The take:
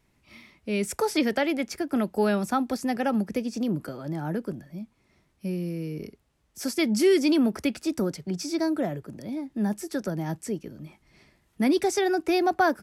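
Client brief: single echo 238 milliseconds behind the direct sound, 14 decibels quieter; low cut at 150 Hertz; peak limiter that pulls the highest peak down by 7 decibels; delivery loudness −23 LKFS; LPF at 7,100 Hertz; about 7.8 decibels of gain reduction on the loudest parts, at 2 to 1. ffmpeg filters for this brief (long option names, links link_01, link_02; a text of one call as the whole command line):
ffmpeg -i in.wav -af "highpass=150,lowpass=7100,acompressor=threshold=-31dB:ratio=2,alimiter=level_in=0.5dB:limit=-24dB:level=0:latency=1,volume=-0.5dB,aecho=1:1:238:0.2,volume=11.5dB" out.wav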